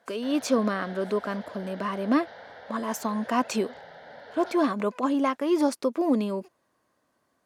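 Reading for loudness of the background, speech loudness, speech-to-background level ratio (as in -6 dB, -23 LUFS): -45.0 LUFS, -27.5 LUFS, 17.5 dB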